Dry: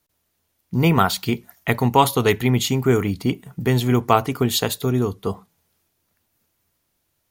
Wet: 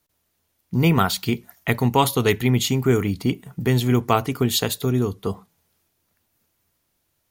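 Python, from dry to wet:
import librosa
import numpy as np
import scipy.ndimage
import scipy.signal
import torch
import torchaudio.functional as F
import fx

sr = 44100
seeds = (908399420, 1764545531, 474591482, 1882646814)

y = fx.dynamic_eq(x, sr, hz=850.0, q=0.81, threshold_db=-30.0, ratio=4.0, max_db=-4)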